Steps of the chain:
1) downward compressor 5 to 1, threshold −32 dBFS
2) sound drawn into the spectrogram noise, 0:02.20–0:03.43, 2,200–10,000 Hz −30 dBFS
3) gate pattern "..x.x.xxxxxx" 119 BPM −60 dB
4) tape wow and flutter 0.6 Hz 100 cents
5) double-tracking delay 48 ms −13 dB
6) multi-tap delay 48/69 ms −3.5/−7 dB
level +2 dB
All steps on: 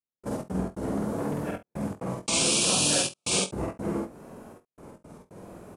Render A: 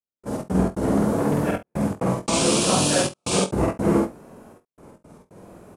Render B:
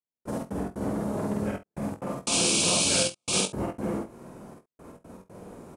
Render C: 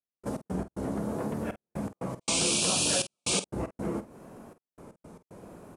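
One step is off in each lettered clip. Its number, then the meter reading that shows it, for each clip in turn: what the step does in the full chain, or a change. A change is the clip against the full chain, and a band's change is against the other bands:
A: 1, average gain reduction 6.0 dB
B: 4, change in momentary loudness spread +5 LU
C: 6, echo-to-direct ratio −2.0 dB to none audible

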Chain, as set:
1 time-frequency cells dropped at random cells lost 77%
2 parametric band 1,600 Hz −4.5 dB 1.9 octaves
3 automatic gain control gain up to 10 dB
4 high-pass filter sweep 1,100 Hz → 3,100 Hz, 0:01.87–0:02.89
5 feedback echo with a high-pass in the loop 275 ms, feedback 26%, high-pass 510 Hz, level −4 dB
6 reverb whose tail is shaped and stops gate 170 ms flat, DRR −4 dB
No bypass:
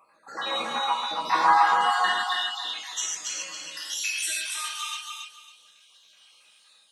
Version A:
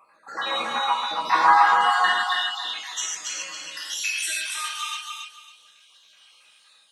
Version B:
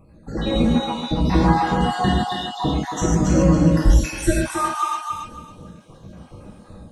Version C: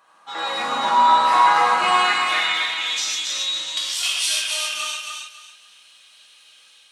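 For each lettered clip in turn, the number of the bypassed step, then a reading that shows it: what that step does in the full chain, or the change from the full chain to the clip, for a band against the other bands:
2, 2 kHz band +3.0 dB
4, 250 Hz band +30.0 dB
1, 8 kHz band −2.0 dB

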